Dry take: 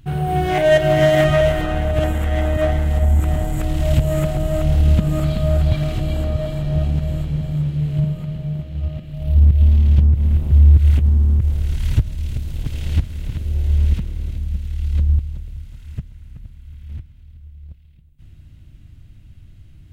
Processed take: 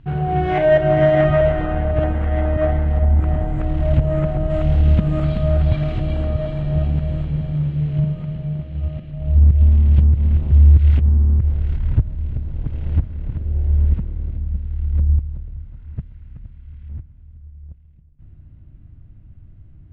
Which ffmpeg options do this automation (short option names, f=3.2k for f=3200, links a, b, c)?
-af "asetnsamples=n=441:p=0,asendcmd='0.65 lowpass f 1700;4.5 lowpass f 2700;9.11 lowpass f 2000;9.94 lowpass f 2900;11 lowpass f 1900;11.77 lowpass f 1200;15.99 lowpass f 1900;16.89 lowpass f 1200',lowpass=2.3k"